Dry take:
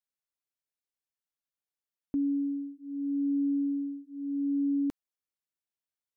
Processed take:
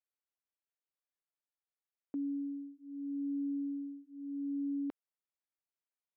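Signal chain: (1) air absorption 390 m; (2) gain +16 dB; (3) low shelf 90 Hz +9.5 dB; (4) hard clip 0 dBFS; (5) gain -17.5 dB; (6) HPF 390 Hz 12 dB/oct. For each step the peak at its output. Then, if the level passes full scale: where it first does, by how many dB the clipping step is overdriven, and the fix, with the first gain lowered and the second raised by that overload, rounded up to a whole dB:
-25.0, -9.0, -6.0, -6.0, -23.5, -32.0 dBFS; no overload

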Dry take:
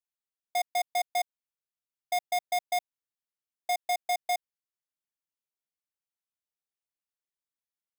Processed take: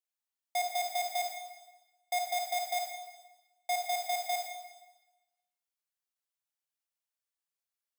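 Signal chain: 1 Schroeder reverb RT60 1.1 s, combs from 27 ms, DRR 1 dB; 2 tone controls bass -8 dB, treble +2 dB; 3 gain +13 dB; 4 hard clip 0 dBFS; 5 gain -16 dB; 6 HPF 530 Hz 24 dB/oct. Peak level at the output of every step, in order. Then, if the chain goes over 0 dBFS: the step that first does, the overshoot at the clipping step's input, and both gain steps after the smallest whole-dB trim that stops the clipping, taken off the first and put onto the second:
-22.5, -19.0, -6.0, -6.0, -22.0, -20.0 dBFS; no overload

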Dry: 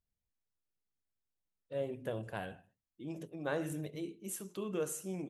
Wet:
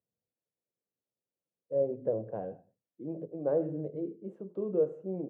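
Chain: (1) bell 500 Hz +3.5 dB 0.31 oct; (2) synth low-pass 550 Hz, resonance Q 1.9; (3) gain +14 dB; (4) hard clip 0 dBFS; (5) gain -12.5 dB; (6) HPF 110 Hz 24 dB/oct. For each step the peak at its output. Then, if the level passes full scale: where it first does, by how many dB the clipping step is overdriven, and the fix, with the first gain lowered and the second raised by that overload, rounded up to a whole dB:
-21.5, -19.5, -5.5, -5.5, -18.0, -18.0 dBFS; no overload

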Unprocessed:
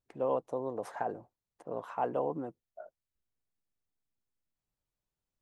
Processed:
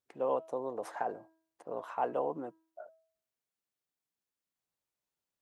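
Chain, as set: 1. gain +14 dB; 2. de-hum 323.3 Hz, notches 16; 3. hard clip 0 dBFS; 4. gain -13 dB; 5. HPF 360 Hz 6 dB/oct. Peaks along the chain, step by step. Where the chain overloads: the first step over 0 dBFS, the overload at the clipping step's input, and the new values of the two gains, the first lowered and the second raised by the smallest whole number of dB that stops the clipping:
-4.5, -5.0, -5.0, -18.0, -19.5 dBFS; no overload

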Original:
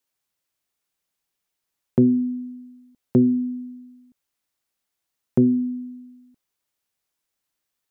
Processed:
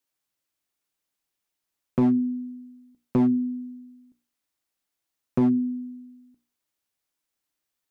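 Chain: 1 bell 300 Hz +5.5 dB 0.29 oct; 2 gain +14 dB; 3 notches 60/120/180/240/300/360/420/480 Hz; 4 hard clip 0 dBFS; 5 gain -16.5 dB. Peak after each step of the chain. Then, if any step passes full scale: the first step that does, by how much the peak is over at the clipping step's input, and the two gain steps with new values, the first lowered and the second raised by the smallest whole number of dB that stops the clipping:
-6.5, +7.5, +6.0, 0.0, -16.5 dBFS; step 2, 6.0 dB; step 2 +8 dB, step 5 -10.5 dB

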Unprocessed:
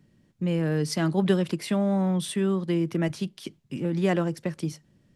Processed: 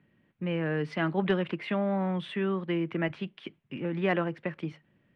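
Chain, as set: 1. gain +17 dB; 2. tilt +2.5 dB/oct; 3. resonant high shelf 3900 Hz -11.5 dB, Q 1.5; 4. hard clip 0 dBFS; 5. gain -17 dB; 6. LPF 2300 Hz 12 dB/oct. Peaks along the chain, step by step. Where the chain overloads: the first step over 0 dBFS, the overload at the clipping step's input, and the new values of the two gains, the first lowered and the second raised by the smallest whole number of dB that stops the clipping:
+7.5, +4.5, +5.0, 0.0, -17.0, -16.5 dBFS; step 1, 5.0 dB; step 1 +12 dB, step 5 -12 dB

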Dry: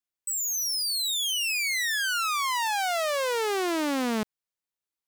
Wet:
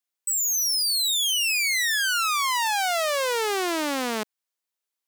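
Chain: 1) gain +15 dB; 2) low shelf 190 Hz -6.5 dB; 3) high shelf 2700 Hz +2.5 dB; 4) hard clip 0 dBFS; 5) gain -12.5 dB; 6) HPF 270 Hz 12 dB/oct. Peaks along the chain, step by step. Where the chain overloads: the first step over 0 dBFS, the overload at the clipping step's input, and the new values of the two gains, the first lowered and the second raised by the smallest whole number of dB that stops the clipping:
-7.0, -4.5, -2.0, -2.0, -14.5, -12.0 dBFS; no overload

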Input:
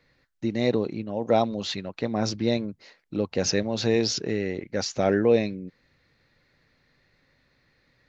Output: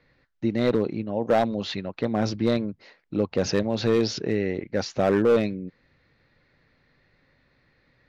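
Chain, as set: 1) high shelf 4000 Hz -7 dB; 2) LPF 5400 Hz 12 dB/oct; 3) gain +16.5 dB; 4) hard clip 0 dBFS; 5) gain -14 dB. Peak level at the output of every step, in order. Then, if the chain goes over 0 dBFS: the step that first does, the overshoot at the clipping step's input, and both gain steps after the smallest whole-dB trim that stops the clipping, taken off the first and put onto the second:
-8.5, -8.5, +8.0, 0.0, -14.0 dBFS; step 3, 8.0 dB; step 3 +8.5 dB, step 5 -6 dB

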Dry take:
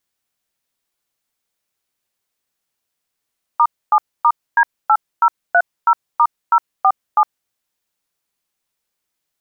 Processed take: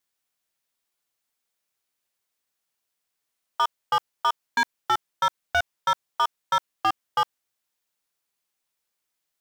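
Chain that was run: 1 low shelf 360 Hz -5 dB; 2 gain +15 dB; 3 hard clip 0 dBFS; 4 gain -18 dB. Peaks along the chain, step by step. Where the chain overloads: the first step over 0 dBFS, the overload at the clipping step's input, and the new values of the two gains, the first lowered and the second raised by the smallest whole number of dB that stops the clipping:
-5.5, +9.5, 0.0, -18.0 dBFS; step 2, 9.5 dB; step 2 +5 dB, step 4 -8 dB

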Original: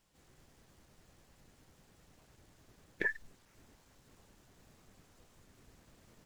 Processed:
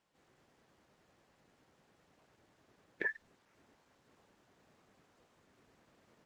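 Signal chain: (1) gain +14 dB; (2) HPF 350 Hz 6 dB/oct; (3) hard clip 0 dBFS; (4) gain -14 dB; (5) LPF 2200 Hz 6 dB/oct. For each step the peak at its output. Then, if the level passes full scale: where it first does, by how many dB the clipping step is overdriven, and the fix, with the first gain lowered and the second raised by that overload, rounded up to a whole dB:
-5.0, -5.5, -5.5, -19.5, -22.0 dBFS; no overload

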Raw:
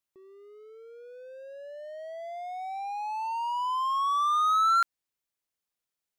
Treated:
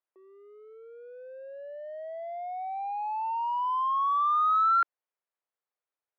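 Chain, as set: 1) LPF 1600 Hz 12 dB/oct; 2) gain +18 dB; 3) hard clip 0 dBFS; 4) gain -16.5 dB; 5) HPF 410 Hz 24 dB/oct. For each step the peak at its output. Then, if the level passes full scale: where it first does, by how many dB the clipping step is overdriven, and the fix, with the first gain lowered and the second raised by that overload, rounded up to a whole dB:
-20.5, -2.5, -2.5, -19.0, -19.0 dBFS; no overload

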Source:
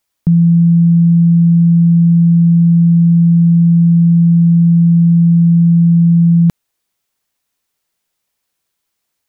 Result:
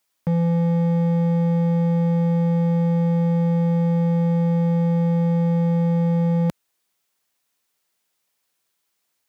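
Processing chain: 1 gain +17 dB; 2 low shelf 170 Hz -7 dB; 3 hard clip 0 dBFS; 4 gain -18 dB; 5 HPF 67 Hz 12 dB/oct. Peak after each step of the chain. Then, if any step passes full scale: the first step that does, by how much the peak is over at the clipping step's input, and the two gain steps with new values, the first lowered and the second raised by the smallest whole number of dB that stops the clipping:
+12.0, +8.5, 0.0, -18.0, -13.5 dBFS; step 1, 8.5 dB; step 1 +8 dB, step 4 -9 dB

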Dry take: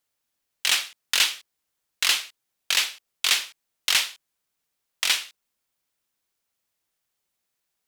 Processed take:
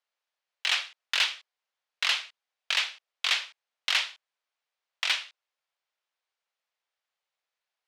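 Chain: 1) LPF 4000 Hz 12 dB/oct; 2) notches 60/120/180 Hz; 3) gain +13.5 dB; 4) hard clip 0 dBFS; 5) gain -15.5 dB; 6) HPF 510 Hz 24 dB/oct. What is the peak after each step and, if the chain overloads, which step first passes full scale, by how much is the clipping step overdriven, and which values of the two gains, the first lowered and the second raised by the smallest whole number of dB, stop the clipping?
-7.0, -7.0, +6.5, 0.0, -15.5, -12.0 dBFS; step 3, 6.5 dB; step 3 +6.5 dB, step 5 -8.5 dB

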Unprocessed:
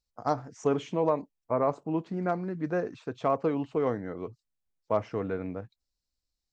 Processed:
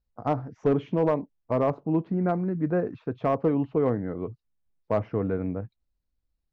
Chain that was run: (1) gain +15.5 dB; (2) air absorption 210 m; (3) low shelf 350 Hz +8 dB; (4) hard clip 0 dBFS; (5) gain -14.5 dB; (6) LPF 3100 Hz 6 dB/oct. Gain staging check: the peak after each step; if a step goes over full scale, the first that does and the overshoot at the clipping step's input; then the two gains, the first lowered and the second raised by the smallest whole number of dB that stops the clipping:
+2.5, +1.5, +5.5, 0.0, -14.5, -14.5 dBFS; step 1, 5.5 dB; step 1 +9.5 dB, step 5 -8.5 dB

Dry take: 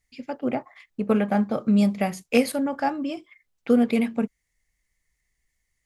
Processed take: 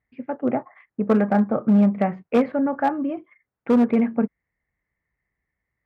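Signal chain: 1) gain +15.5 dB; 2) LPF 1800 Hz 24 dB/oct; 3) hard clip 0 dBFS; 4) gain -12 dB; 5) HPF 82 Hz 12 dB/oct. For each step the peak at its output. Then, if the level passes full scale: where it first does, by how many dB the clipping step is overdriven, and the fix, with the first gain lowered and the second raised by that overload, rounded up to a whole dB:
+8.5, +7.5, 0.0, -12.0, -9.0 dBFS; step 1, 7.5 dB; step 1 +7.5 dB, step 4 -4 dB

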